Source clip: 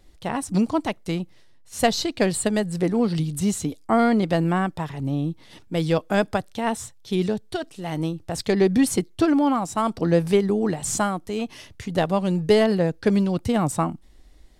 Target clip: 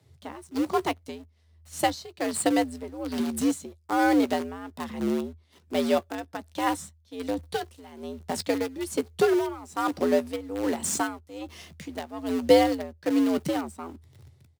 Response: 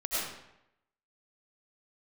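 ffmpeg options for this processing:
-filter_complex "[0:a]tremolo=f=1.2:d=0.83,asplit=2[s0][s1];[s1]acrusher=bits=5:dc=4:mix=0:aa=0.000001,volume=0.631[s2];[s0][s2]amix=inputs=2:normalize=0,afreqshift=80,asplit=2[s3][s4];[s4]adelay=14,volume=0.211[s5];[s3][s5]amix=inputs=2:normalize=0,volume=0.531"

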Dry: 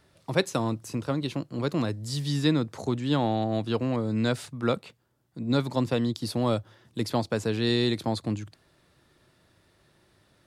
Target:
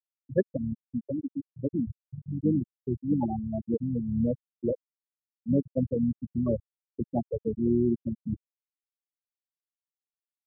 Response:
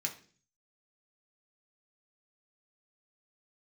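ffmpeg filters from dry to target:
-filter_complex "[0:a]asplit=2[s0][s1];[1:a]atrim=start_sample=2205,atrim=end_sample=6174[s2];[s1][s2]afir=irnorm=-1:irlink=0,volume=0.15[s3];[s0][s3]amix=inputs=2:normalize=0,asplit=3[s4][s5][s6];[s5]asetrate=29433,aresample=44100,atempo=1.49831,volume=0.398[s7];[s6]asetrate=88200,aresample=44100,atempo=0.5,volume=0.178[s8];[s4][s7][s8]amix=inputs=3:normalize=0,aeval=exprs='val(0)+0.00794*(sin(2*PI*60*n/s)+sin(2*PI*2*60*n/s)/2+sin(2*PI*3*60*n/s)/3+sin(2*PI*4*60*n/s)/4+sin(2*PI*5*60*n/s)/5)':c=same,afftfilt=real='re*gte(hypot(re,im),0.316)':imag='im*gte(hypot(re,im),0.316)':win_size=1024:overlap=0.75"

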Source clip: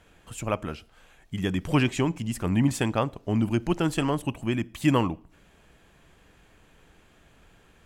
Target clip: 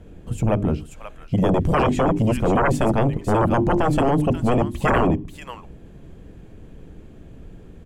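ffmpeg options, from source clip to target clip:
-filter_complex "[0:a]bandreject=f=50:t=h:w=6,bandreject=f=100:t=h:w=6,bandreject=f=150:t=h:w=6,bandreject=f=200:t=h:w=6,bandreject=f=250:t=h:w=6,bandreject=f=300:t=h:w=6,bandreject=f=350:t=h:w=6,bandreject=f=400:t=h:w=6,acrossover=split=470[s0][s1];[s0]aeval=exprs='0.251*sin(PI/2*7.08*val(0)/0.251)':c=same[s2];[s1]aecho=1:1:534:0.501[s3];[s2][s3]amix=inputs=2:normalize=0,volume=0.75"

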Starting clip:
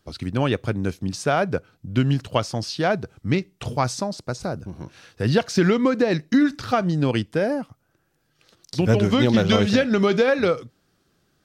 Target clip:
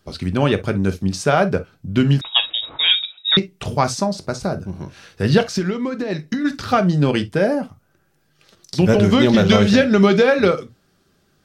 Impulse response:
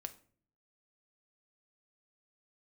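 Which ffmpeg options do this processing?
-filter_complex "[0:a]asplit=3[s0][s1][s2];[s0]afade=t=out:st=5.48:d=0.02[s3];[s1]acompressor=threshold=0.0631:ratio=10,afade=t=in:st=5.48:d=0.02,afade=t=out:st=6.44:d=0.02[s4];[s2]afade=t=in:st=6.44:d=0.02[s5];[s3][s4][s5]amix=inputs=3:normalize=0[s6];[1:a]atrim=start_sample=2205,atrim=end_sample=3087[s7];[s6][s7]afir=irnorm=-1:irlink=0,asettb=1/sr,asplit=3[s8][s9][s10];[s8]atrim=end=2.214[s11];[s9]atrim=start=2.21:end=3.37,asetpts=PTS-STARTPTS,afade=t=in:d=0.004:c=qsin,afade=t=out:st=1.156:d=0.004:c=qsin,lowpass=f=3300:t=q:w=0.5098,lowpass=f=3300:t=q:w=0.6013,lowpass=f=3300:t=q:w=0.9,lowpass=f=3300:t=q:w=2.563,afreqshift=-3900[s12];[s10]atrim=start=3.366[s13];[s11][s12]acrossfade=d=0.004:c1=hsin:c2=qsin[s14];[s14][s13]acrossfade=d=0.004:c1=qsin:c2=hsin,volume=2.51"

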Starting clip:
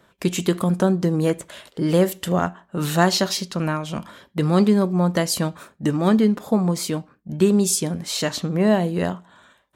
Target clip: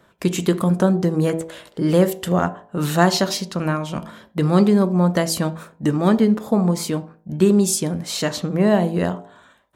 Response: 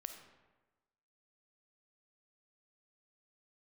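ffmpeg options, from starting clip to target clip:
-filter_complex "[0:a]bandreject=f=54.29:t=h:w=4,bandreject=f=108.58:t=h:w=4,bandreject=f=162.87:t=h:w=4,bandreject=f=217.16:t=h:w=4,bandreject=f=271.45:t=h:w=4,bandreject=f=325.74:t=h:w=4,bandreject=f=380.03:t=h:w=4,bandreject=f=434.32:t=h:w=4,bandreject=f=488.61:t=h:w=4,bandreject=f=542.9:t=h:w=4,bandreject=f=597.19:t=h:w=4,bandreject=f=651.48:t=h:w=4,bandreject=f=705.77:t=h:w=4,bandreject=f=760.06:t=h:w=4,bandreject=f=814.35:t=h:w=4,bandreject=f=868.64:t=h:w=4,bandreject=f=922.93:t=h:w=4,bandreject=f=977.22:t=h:w=4,bandreject=f=1031.51:t=h:w=4,asplit=2[s0][s1];[1:a]atrim=start_sample=2205,atrim=end_sample=4410,lowpass=2200[s2];[s1][s2]afir=irnorm=-1:irlink=0,volume=0.531[s3];[s0][s3]amix=inputs=2:normalize=0"

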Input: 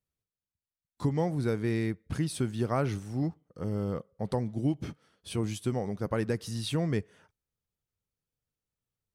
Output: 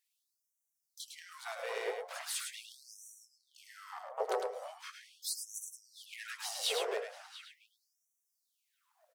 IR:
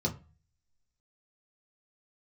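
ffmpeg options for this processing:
-filter_complex "[0:a]asplit=4[s0][s1][s2][s3];[s1]asetrate=35002,aresample=44100,atempo=1.25992,volume=0.447[s4];[s2]asetrate=52444,aresample=44100,atempo=0.840896,volume=0.158[s5];[s3]asetrate=66075,aresample=44100,atempo=0.66742,volume=0.355[s6];[s0][s4][s5][s6]amix=inputs=4:normalize=0,acompressor=threshold=0.00891:ratio=3,asplit=2[s7][s8];[s8]aecho=0:1:105:0.531[s9];[s7][s9]amix=inputs=2:normalize=0,aeval=exprs='0.0299*(abs(mod(val(0)/0.0299+3,4)-2)-1)':c=same,asplit=2[s10][s11];[s11]adelay=690,lowpass=f=1100:p=1,volume=0.501,asplit=2[s12][s13];[s13]adelay=690,lowpass=f=1100:p=1,volume=0.39,asplit=2[s14][s15];[s15]adelay=690,lowpass=f=1100:p=1,volume=0.39,asplit=2[s16][s17];[s17]adelay=690,lowpass=f=1100:p=1,volume=0.39,asplit=2[s18][s19];[s19]adelay=690,lowpass=f=1100:p=1,volume=0.39[s20];[s12][s14][s16][s18][s20]amix=inputs=5:normalize=0[s21];[s10][s21]amix=inputs=2:normalize=0,afftfilt=real='re*gte(b*sr/1024,380*pow(5700/380,0.5+0.5*sin(2*PI*0.4*pts/sr)))':imag='im*gte(b*sr/1024,380*pow(5700/380,0.5+0.5*sin(2*PI*0.4*pts/sr)))':win_size=1024:overlap=0.75,volume=2.99"

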